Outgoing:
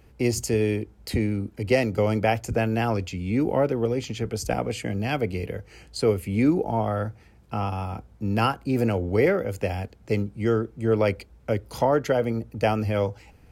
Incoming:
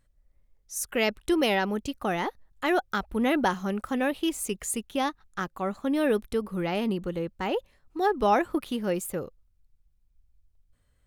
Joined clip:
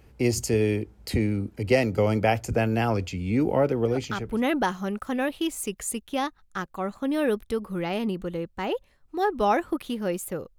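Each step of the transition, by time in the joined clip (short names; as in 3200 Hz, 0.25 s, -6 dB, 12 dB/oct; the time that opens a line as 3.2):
outgoing
4.14 switch to incoming from 2.96 s, crossfade 0.54 s equal-power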